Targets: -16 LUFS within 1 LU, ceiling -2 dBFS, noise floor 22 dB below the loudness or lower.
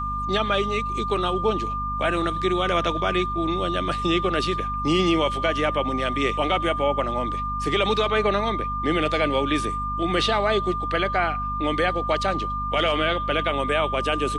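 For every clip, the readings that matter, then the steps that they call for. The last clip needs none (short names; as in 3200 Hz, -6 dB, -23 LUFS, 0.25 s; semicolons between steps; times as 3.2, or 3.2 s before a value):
hum 50 Hz; harmonics up to 250 Hz; hum level -30 dBFS; steady tone 1200 Hz; tone level -26 dBFS; loudness -23.5 LUFS; peak -10.0 dBFS; loudness target -16.0 LUFS
-> notches 50/100/150/200/250 Hz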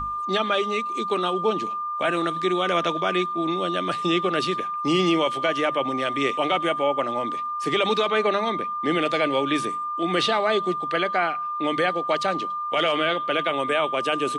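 hum none; steady tone 1200 Hz; tone level -26 dBFS
-> notch 1200 Hz, Q 30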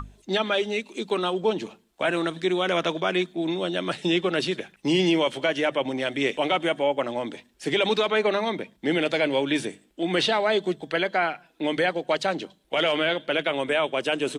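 steady tone none; loudness -25.0 LUFS; peak -12.0 dBFS; loudness target -16.0 LUFS
-> gain +9 dB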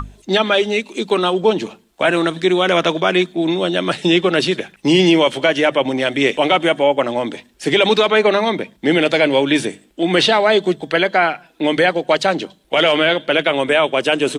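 loudness -16.0 LUFS; peak -3.0 dBFS; noise floor -54 dBFS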